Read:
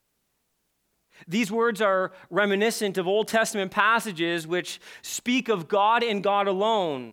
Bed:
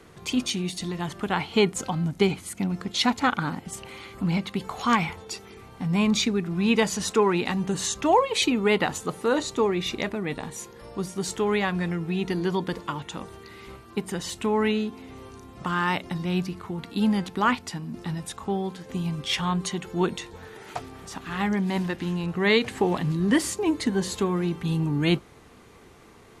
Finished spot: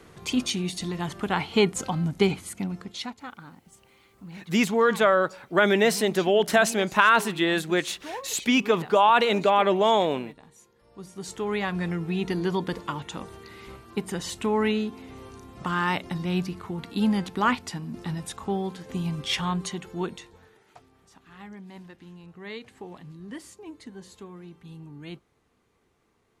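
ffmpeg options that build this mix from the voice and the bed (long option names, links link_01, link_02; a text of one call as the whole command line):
ffmpeg -i stem1.wav -i stem2.wav -filter_complex "[0:a]adelay=3200,volume=2.5dB[link_01];[1:a]volume=17dB,afade=type=out:start_time=2.35:duration=0.8:silence=0.133352,afade=type=in:start_time=10.85:duration=1.1:silence=0.141254,afade=type=out:start_time=19.31:duration=1.33:silence=0.133352[link_02];[link_01][link_02]amix=inputs=2:normalize=0" out.wav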